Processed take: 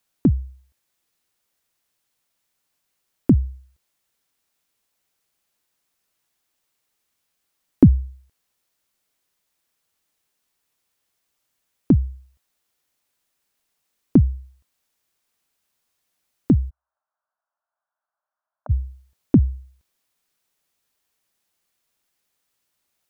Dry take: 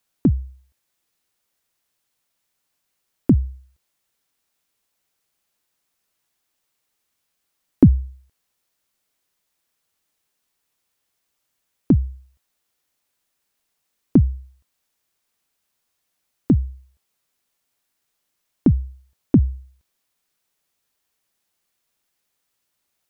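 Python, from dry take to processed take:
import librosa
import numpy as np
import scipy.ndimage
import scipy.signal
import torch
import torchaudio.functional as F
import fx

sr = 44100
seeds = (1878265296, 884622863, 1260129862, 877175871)

y = fx.ellip_bandpass(x, sr, low_hz=610.0, high_hz=1500.0, order=3, stop_db=40, at=(16.69, 18.69), fade=0.02)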